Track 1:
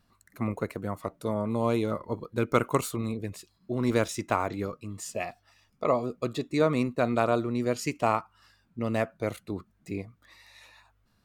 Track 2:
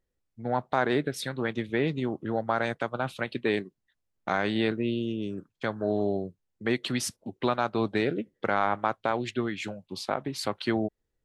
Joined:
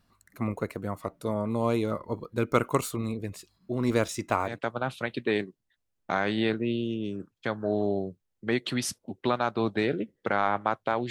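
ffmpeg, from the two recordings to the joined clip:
-filter_complex "[0:a]apad=whole_dur=11.1,atrim=end=11.1,atrim=end=4.59,asetpts=PTS-STARTPTS[a];[1:a]atrim=start=2.61:end=9.28,asetpts=PTS-STARTPTS[b];[a][b]acrossfade=d=0.16:c1=tri:c2=tri"

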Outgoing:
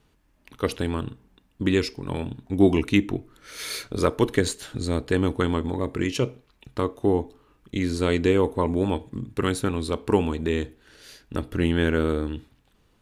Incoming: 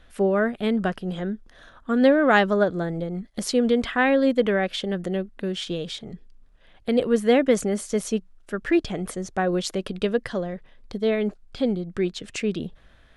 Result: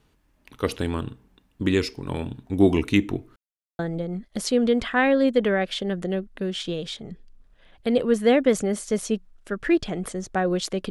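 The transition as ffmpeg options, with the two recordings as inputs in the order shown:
-filter_complex "[0:a]apad=whole_dur=10.9,atrim=end=10.9,asplit=2[a][b];[a]atrim=end=3.36,asetpts=PTS-STARTPTS,afade=t=out:st=3.356:d=0.004:c=hsin[c];[b]atrim=start=3.36:end=3.79,asetpts=PTS-STARTPTS,volume=0[d];[1:a]atrim=start=2.81:end=9.92,asetpts=PTS-STARTPTS,afade=t=in:d=0.004:c=hsin[e];[c][d][e]concat=n=3:v=0:a=1"

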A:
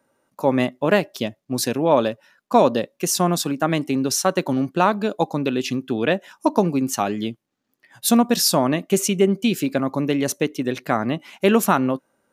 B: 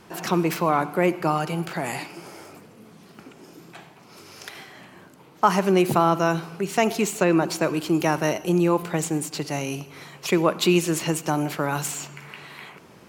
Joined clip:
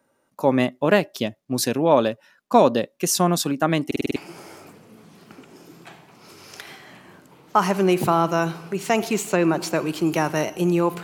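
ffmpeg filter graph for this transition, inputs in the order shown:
-filter_complex "[0:a]apad=whole_dur=11.03,atrim=end=11.03,asplit=6[a][b][c][d][e][f];[a]atrim=end=3.912[g];[b]atrim=start=3.858:end=3.912[h];[c]atrim=start=3.858:end=3.912[i];[d]atrim=start=3.858:end=3.912[j];[e]atrim=start=3.858:end=3.912[k];[f]atrim=start=3.858:end=3.912[l];[1:a]atrim=start=2.038:end=8.91[m];[g][h]acrossfade=d=0.004:c1=hsin:c2=hsin[n];[n][i]acrossfade=d=0.004:c1=hsin:c2=hsin[o];[o][j]acrossfade=d=0.004:c1=hsin:c2=hsin[p];[p][k]acrossfade=d=0.004:c1=hsin:c2=hsin[q];[q][l]acrossfade=d=0.004:c1=hsin:c2=hsin[r];[r][m]acrossfade=d=0.004:c1=hsin:c2=hsin"

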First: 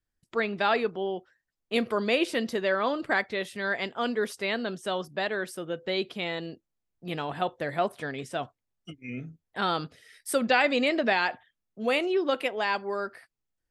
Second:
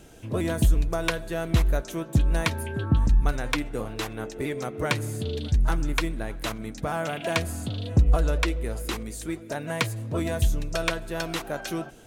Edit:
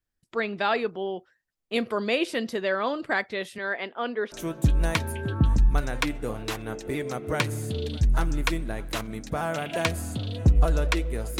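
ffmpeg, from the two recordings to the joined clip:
-filter_complex "[0:a]asettb=1/sr,asplit=3[a][b][c];[a]atrim=end=3.584[d];[b]atrim=start=3.58:end=4.32,asetpts=PTS-STARTPTS,afade=t=in:d=0.004:c=qsin,afade=t=out:st=0.736:d=0.004:c=qsin,highpass=260,lowpass=3k[e];[c]atrim=start=4.316[f];[d][e]acrossfade=d=0.004:c1=hsin:c2=qsin[g];[g][f]acrossfade=d=0.004:c1=qsin:c2=hsin,apad=whole_dur=11.39,atrim=end=11.39,atrim=end=4.322[h];[1:a]atrim=start=1.828:end=8.9[i];[h][i]acrossfade=d=0.004:c1=hsin:c2=hsin"

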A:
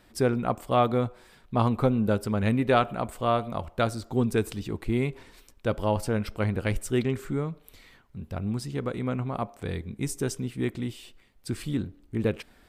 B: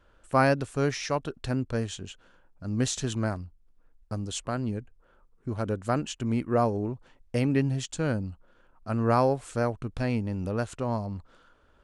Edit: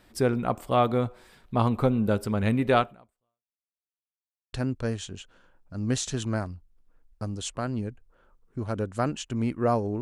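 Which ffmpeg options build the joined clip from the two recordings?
-filter_complex "[0:a]apad=whole_dur=10.01,atrim=end=10.01,asplit=2[a][b];[a]atrim=end=3.64,asetpts=PTS-STARTPTS,afade=t=out:st=2.8:d=0.84:c=exp[c];[b]atrim=start=3.64:end=4.53,asetpts=PTS-STARTPTS,volume=0[d];[1:a]atrim=start=1.43:end=6.91,asetpts=PTS-STARTPTS,afade=t=in:d=0.004:c=hsin[e];[c][d][e]concat=n=3:v=0:a=1"

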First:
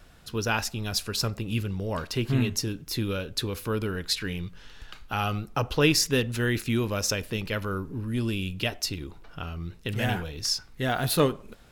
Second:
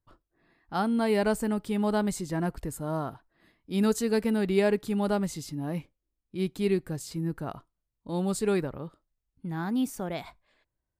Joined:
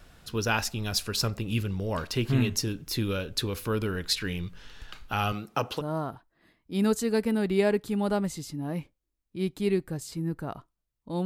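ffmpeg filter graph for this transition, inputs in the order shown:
-filter_complex "[0:a]asettb=1/sr,asplit=3[a][b][c];[a]atrim=end=5.324[d];[b]atrim=start=5.32:end=5.82,asetpts=PTS-STARTPTS,afade=t=in:d=0.004:c=qsin,afade=t=out:st=0.496:d=0.004:c=qsin,highpass=170[e];[c]atrim=start=5.816[f];[d][e]acrossfade=d=0.004:c1=hsin:c2=qsin[g];[g][f]acrossfade=d=0.004:c1=qsin:c2=hsin,apad=whole_dur=11.25,atrim=end=11.25,atrim=end=5.82,asetpts=PTS-STARTPTS[h];[1:a]atrim=start=2.75:end=8.24,asetpts=PTS-STARTPTS[i];[h][i]acrossfade=d=0.06:c1=tri:c2=tri"

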